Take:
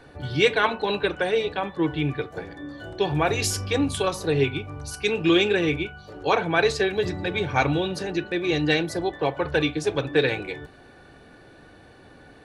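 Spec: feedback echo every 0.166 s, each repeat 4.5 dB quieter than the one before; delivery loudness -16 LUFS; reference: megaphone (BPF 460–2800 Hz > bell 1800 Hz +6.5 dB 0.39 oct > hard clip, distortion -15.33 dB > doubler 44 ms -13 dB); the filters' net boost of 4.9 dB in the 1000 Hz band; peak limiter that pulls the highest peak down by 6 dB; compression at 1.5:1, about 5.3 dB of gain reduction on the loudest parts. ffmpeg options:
-filter_complex "[0:a]equalizer=f=1k:t=o:g=6.5,acompressor=threshold=-27dB:ratio=1.5,alimiter=limit=-15.5dB:level=0:latency=1,highpass=460,lowpass=2.8k,equalizer=f=1.8k:t=o:w=0.39:g=6.5,aecho=1:1:166|332|498|664|830|996|1162|1328|1494:0.596|0.357|0.214|0.129|0.0772|0.0463|0.0278|0.0167|0.01,asoftclip=type=hard:threshold=-22dB,asplit=2[a][b];[b]adelay=44,volume=-13dB[c];[a][c]amix=inputs=2:normalize=0,volume=13dB"

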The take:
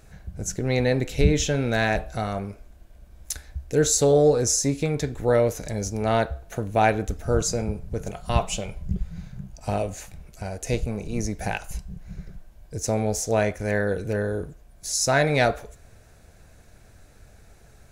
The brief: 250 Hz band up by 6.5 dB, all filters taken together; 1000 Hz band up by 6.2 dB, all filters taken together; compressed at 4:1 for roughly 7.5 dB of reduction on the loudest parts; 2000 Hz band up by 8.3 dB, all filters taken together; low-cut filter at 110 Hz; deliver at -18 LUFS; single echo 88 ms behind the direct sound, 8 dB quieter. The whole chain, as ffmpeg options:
-af "highpass=110,equalizer=f=250:t=o:g=8,equalizer=f=1k:t=o:g=7,equalizer=f=2k:t=o:g=8,acompressor=threshold=-18dB:ratio=4,aecho=1:1:88:0.398,volume=6dB"

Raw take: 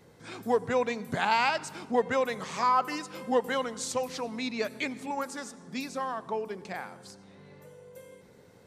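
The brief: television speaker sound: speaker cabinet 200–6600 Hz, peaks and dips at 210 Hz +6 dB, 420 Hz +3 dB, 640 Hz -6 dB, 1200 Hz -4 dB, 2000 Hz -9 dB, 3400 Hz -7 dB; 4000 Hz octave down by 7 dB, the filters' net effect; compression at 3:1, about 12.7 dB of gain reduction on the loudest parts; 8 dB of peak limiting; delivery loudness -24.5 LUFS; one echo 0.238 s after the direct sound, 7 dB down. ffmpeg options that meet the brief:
-af "equalizer=f=4k:t=o:g=-5,acompressor=threshold=-38dB:ratio=3,alimiter=level_in=6.5dB:limit=-24dB:level=0:latency=1,volume=-6.5dB,highpass=f=200:w=0.5412,highpass=f=200:w=1.3066,equalizer=f=210:t=q:w=4:g=6,equalizer=f=420:t=q:w=4:g=3,equalizer=f=640:t=q:w=4:g=-6,equalizer=f=1.2k:t=q:w=4:g=-4,equalizer=f=2k:t=q:w=4:g=-9,equalizer=f=3.4k:t=q:w=4:g=-7,lowpass=f=6.6k:w=0.5412,lowpass=f=6.6k:w=1.3066,aecho=1:1:238:0.447,volume=17dB"

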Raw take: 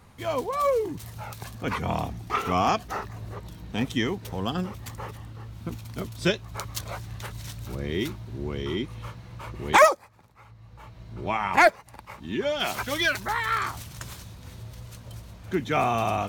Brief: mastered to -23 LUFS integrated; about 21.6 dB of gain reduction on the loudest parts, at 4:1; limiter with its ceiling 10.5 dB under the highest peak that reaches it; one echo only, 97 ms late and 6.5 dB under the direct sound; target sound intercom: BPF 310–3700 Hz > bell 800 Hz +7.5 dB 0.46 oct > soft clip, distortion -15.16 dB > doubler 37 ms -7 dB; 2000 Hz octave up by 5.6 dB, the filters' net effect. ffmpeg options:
-filter_complex "[0:a]equalizer=f=2k:t=o:g=7,acompressor=threshold=-36dB:ratio=4,alimiter=level_in=5dB:limit=-24dB:level=0:latency=1,volume=-5dB,highpass=310,lowpass=3.7k,equalizer=f=800:t=o:w=0.46:g=7.5,aecho=1:1:97:0.473,asoftclip=threshold=-32.5dB,asplit=2[a][b];[b]adelay=37,volume=-7dB[c];[a][c]amix=inputs=2:normalize=0,volume=18.5dB"

